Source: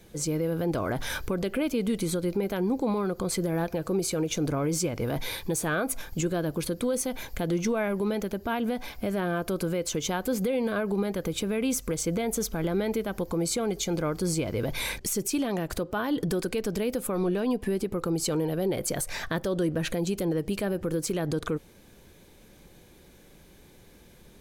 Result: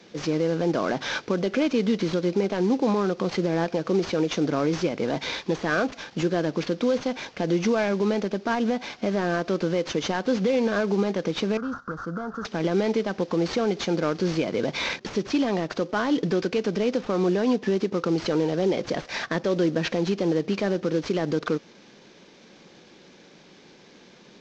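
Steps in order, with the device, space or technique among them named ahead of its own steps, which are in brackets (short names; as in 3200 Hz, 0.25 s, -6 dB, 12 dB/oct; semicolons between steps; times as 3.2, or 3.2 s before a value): early wireless headset (HPF 170 Hz 24 dB/oct; CVSD 32 kbps); 11.57–12.45 EQ curve 100 Hz 0 dB, 440 Hz -12 dB, 910 Hz -5 dB, 1400 Hz +14 dB, 2200 Hz -29 dB, 4500 Hz -17 dB; gain +5 dB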